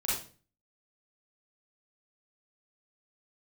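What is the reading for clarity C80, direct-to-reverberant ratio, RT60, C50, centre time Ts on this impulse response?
7.0 dB, −8.0 dB, 0.40 s, −0.5 dB, 55 ms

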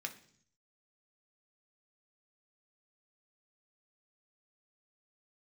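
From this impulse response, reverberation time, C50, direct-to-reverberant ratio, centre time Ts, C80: 0.55 s, 13.5 dB, 3.5 dB, 8 ms, 17.5 dB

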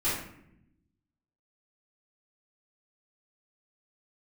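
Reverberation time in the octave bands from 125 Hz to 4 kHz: 1.4, 1.3, 0.85, 0.65, 0.70, 0.45 seconds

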